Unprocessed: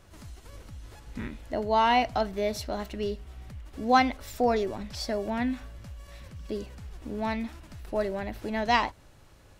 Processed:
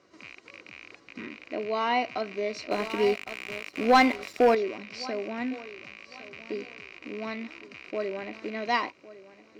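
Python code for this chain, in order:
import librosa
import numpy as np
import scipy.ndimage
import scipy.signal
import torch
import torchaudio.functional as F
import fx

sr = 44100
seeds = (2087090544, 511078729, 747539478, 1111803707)

p1 = fx.rattle_buzz(x, sr, strikes_db=-44.0, level_db=-27.0)
p2 = fx.cabinet(p1, sr, low_hz=300.0, low_slope=12, high_hz=5600.0, hz=(320.0, 650.0, 1400.0, 3300.0), db=(4, -5, -5, -9))
p3 = fx.notch_comb(p2, sr, f0_hz=870.0)
p4 = p3 + fx.echo_feedback(p3, sr, ms=1108, feedback_pct=26, wet_db=-17, dry=0)
p5 = fx.leveller(p4, sr, passes=2, at=(2.71, 4.55))
y = p5 * librosa.db_to_amplitude(1.0)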